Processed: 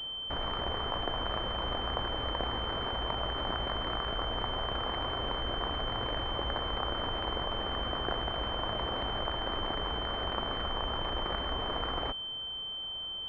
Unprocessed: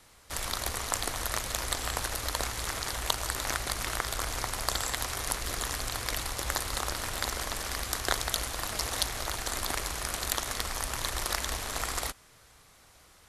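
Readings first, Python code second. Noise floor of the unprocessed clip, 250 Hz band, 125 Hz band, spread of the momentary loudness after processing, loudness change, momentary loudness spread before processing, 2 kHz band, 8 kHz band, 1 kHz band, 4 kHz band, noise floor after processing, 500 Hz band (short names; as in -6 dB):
-58 dBFS, +4.0 dB, +0.5 dB, 1 LU, -1.5 dB, 3 LU, -5.5 dB, under -35 dB, +1.0 dB, +3.0 dB, -39 dBFS, +3.5 dB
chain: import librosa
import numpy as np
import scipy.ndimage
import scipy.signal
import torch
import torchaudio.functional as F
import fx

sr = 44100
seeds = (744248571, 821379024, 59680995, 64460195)

p1 = fx.low_shelf(x, sr, hz=210.0, db=-10.5)
p2 = 10.0 ** (-16.5 / 20.0) * np.tanh(p1 / 10.0 ** (-16.5 / 20.0))
p3 = fx.tilt_eq(p2, sr, slope=-1.5)
p4 = fx.over_compress(p3, sr, threshold_db=-42.0, ratio=-1.0)
p5 = p3 + (p4 * 10.0 ** (-0.5 / 20.0))
y = fx.pwm(p5, sr, carrier_hz=3100.0)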